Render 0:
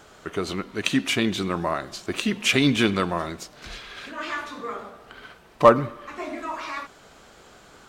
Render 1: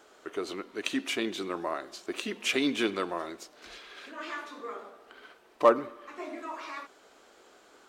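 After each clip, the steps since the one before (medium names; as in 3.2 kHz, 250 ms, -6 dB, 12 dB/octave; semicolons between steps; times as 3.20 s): resonant low shelf 210 Hz -14 dB, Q 1.5; trim -8 dB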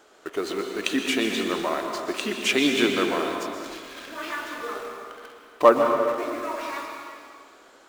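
in parallel at -6 dB: bit crusher 7-bit; on the sum: plate-style reverb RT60 2.1 s, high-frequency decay 0.9×, pre-delay 110 ms, DRR 2.5 dB; trim +2 dB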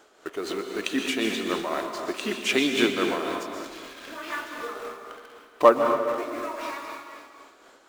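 tremolo 3.9 Hz, depth 40%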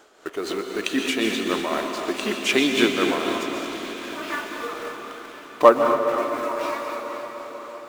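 echo that smears into a reverb 499 ms, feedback 61%, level -10.5 dB; trim +3 dB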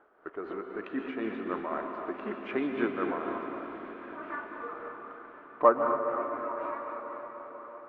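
four-pole ladder low-pass 1.8 kHz, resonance 30%; trim -3 dB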